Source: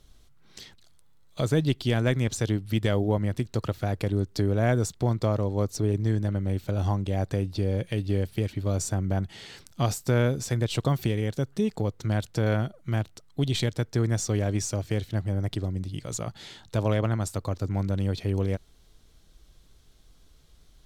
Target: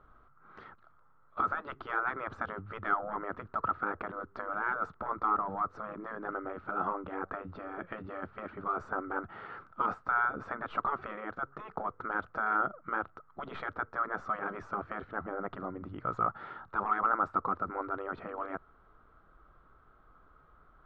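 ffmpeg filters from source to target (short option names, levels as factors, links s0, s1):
-filter_complex "[0:a]asplit=2[s0][s1];[s1]highpass=f=720:p=1,volume=3.98,asoftclip=type=tanh:threshold=0.251[s2];[s0][s2]amix=inputs=2:normalize=0,lowpass=f=1000:p=1,volume=0.501,afftfilt=real='re*lt(hypot(re,im),0.126)':imag='im*lt(hypot(re,im),0.126)':win_size=1024:overlap=0.75,lowpass=f=1300:t=q:w=8.3,volume=0.794"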